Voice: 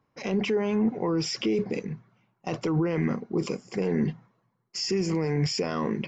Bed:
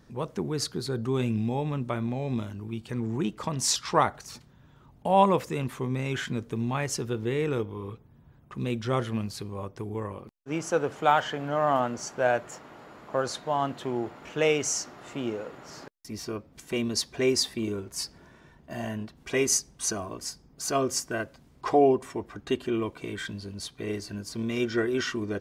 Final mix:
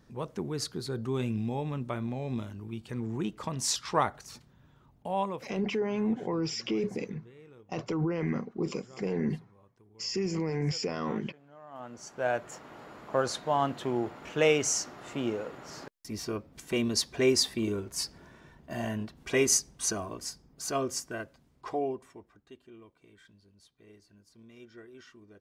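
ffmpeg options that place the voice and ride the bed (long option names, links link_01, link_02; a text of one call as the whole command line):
ffmpeg -i stem1.wav -i stem2.wav -filter_complex "[0:a]adelay=5250,volume=-4.5dB[link_01];[1:a]volume=21.5dB,afade=type=out:start_time=4.65:duration=0.95:silence=0.0841395,afade=type=in:start_time=11.71:duration=1.08:silence=0.0530884,afade=type=out:start_time=19.48:duration=2.99:silence=0.0668344[link_02];[link_01][link_02]amix=inputs=2:normalize=0" out.wav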